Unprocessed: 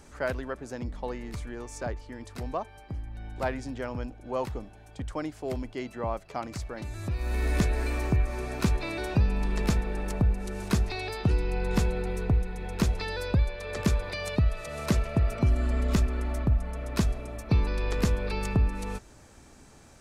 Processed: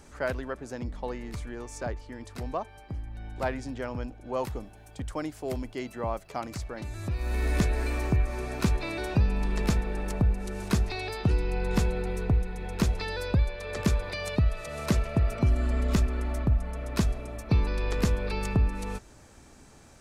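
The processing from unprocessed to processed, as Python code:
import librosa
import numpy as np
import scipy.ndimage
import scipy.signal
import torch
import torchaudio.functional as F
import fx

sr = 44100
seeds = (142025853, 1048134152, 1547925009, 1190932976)

y = fx.high_shelf(x, sr, hz=10000.0, db=11.5, at=(4.37, 6.55))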